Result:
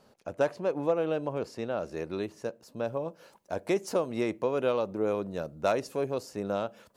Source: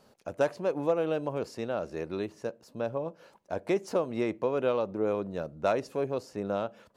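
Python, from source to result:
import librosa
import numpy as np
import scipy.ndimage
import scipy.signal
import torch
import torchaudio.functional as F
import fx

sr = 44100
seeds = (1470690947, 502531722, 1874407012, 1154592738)

y = fx.high_shelf(x, sr, hz=5700.0, db=fx.steps((0.0, -3.0), (1.78, 4.5), (2.86, 9.5)))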